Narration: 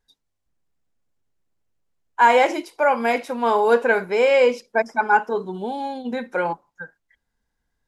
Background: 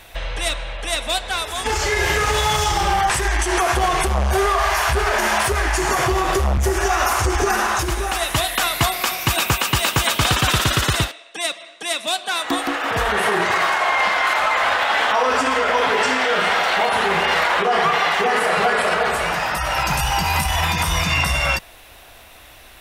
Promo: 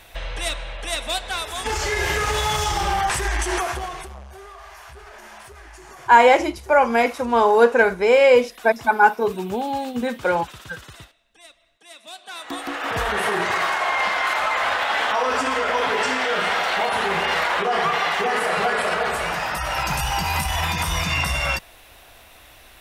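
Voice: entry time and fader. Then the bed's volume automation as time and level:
3.90 s, +2.5 dB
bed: 3.53 s -3.5 dB
4.31 s -23.5 dB
11.76 s -23.5 dB
12.86 s -3.5 dB

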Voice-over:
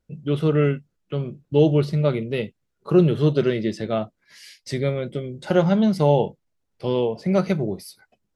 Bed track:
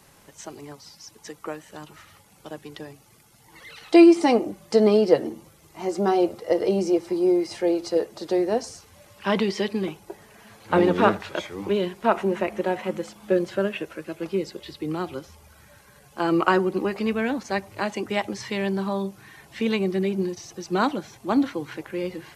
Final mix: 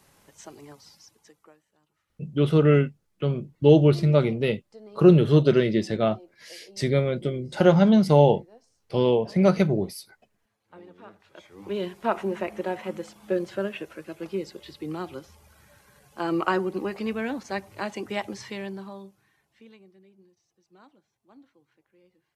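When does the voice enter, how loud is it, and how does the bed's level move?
2.10 s, +1.0 dB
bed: 0.94 s -5.5 dB
1.75 s -29 dB
11.07 s -29 dB
11.81 s -4.5 dB
18.39 s -4.5 dB
19.99 s -32.5 dB

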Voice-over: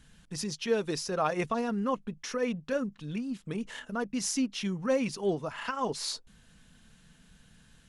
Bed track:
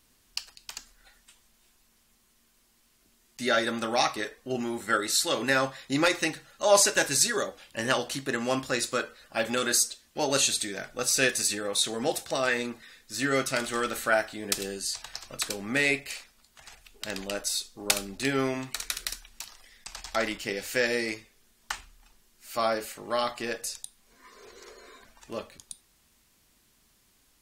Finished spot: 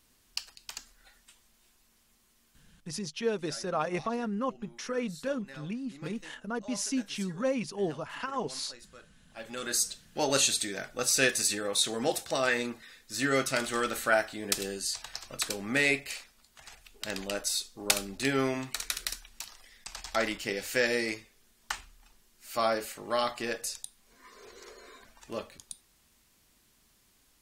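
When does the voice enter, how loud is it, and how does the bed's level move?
2.55 s, -2.0 dB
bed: 2.57 s -1.5 dB
3.15 s -24 dB
9.11 s -24 dB
9.9 s -1 dB

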